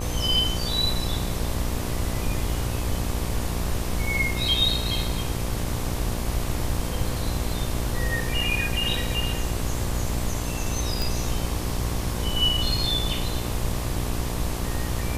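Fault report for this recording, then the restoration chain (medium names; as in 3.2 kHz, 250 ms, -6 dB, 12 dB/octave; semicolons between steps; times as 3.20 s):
buzz 60 Hz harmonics 20 -30 dBFS
11.02 s: pop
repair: de-click; de-hum 60 Hz, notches 20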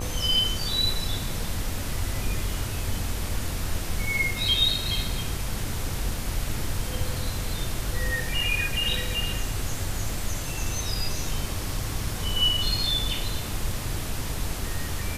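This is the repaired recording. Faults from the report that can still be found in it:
nothing left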